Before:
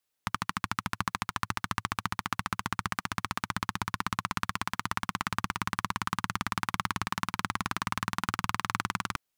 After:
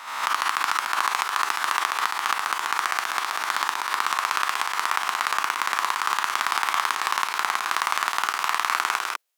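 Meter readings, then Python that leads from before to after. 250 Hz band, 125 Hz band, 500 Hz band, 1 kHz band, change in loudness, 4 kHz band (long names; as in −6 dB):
−11.5 dB, below −25 dB, +7.5 dB, +9.5 dB, +9.0 dB, +9.5 dB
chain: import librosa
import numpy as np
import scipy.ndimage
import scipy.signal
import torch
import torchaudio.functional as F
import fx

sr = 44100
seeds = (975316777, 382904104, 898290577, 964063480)

p1 = fx.spec_swells(x, sr, rise_s=0.94)
p2 = scipy.signal.sosfilt(scipy.signal.butter(4, 440.0, 'highpass', fs=sr, output='sos'), p1)
p3 = fx.level_steps(p2, sr, step_db=10)
y = p2 + (p3 * librosa.db_to_amplitude(0.5))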